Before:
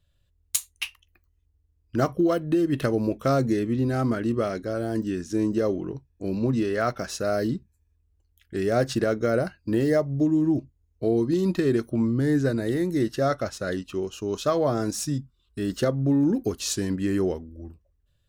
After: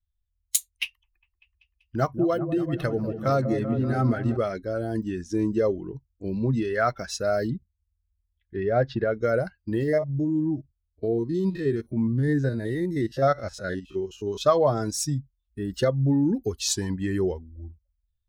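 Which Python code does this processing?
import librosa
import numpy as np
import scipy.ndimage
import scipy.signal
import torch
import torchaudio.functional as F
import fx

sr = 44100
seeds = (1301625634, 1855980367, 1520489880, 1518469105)

y = fx.echo_opening(x, sr, ms=193, hz=750, octaves=1, feedback_pct=70, wet_db=-6, at=(0.84, 4.37))
y = fx.air_absorb(y, sr, metres=210.0, at=(7.5, 9.14))
y = fx.spec_steps(y, sr, hold_ms=50, at=(9.83, 14.41))
y = fx.peak_eq(y, sr, hz=4700.0, db=-9.0, octaves=1.6, at=(15.14, 15.74))
y = fx.peak_eq(y, sr, hz=880.0, db=fx.line((16.67, 14.5), (17.12, 3.0)), octaves=0.53, at=(16.67, 17.12), fade=0.02)
y = fx.bin_expand(y, sr, power=1.5)
y = fx.dynamic_eq(y, sr, hz=280.0, q=1.4, threshold_db=-35.0, ratio=4.0, max_db=-5)
y = fx.rider(y, sr, range_db=4, speed_s=2.0)
y = y * 10.0 ** (4.5 / 20.0)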